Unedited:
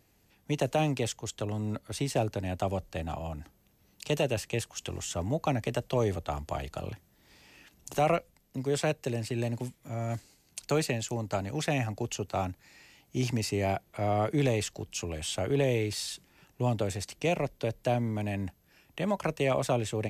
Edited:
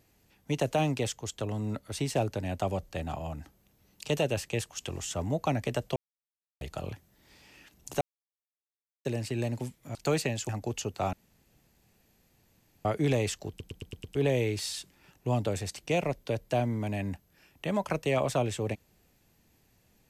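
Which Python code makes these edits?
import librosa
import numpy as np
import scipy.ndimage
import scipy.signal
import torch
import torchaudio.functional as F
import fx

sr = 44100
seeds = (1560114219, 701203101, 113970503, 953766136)

y = fx.edit(x, sr, fx.silence(start_s=5.96, length_s=0.65),
    fx.silence(start_s=8.01, length_s=1.04),
    fx.cut(start_s=9.95, length_s=0.64),
    fx.cut(start_s=11.13, length_s=0.7),
    fx.room_tone_fill(start_s=12.47, length_s=1.72),
    fx.stutter_over(start_s=14.83, slice_s=0.11, count=6), tone=tone)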